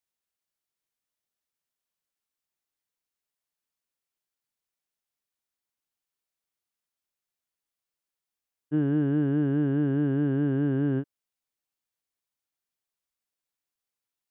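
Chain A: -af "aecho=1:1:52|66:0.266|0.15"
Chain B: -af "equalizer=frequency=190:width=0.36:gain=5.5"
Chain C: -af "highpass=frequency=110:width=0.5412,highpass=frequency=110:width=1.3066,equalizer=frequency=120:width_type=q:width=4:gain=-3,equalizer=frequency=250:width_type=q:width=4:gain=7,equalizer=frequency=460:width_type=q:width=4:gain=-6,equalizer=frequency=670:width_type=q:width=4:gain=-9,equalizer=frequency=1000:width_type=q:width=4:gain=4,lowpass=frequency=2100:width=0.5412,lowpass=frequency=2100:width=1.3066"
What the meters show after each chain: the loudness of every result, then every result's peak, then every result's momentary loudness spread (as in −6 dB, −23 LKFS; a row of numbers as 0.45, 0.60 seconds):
−25.5, −21.0, −24.5 LKFS; −14.5, −11.5, −16.0 dBFS; 4, 5, 5 LU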